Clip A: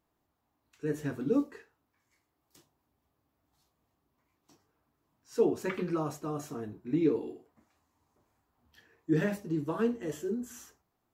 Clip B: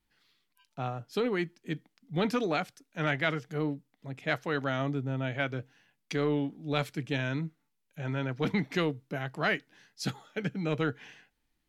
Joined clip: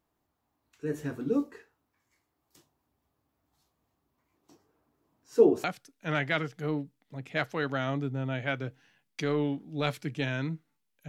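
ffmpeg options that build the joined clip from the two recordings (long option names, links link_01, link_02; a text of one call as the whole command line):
ffmpeg -i cue0.wav -i cue1.wav -filter_complex "[0:a]asettb=1/sr,asplit=3[link_01][link_02][link_03];[link_01]atrim=end=4.314[link_04];[link_02]atrim=start=4.31:end=5.64,asetpts=PTS-STARTPTS,afade=type=in:duration=0.004:curve=qsin,afade=type=out:start_time=1.326:duration=0.004:curve=qsin,equalizer=frequency=400:width_type=o:width=1.8:gain=6.5[link_05];[link_03]atrim=start=5.636[link_06];[link_04][link_05]acrossfade=duration=0.004:curve1=hsin:curve2=qsin[link_07];[link_07][link_06]acrossfade=duration=0.004:curve1=qsin:curve2=hsin,apad=whole_dur=11.08,atrim=end=11.08,atrim=end=5.642[link_08];[1:a]atrim=start=2.558:end=8[link_09];[link_08][link_09]acrossfade=duration=0.004:curve1=hsin:curve2=hsin" out.wav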